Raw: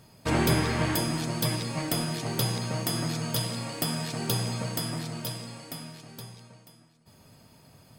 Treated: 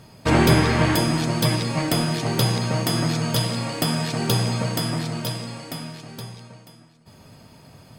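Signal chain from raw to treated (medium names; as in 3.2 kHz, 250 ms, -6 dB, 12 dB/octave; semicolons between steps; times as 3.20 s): treble shelf 8.4 kHz -8.5 dB; trim +8 dB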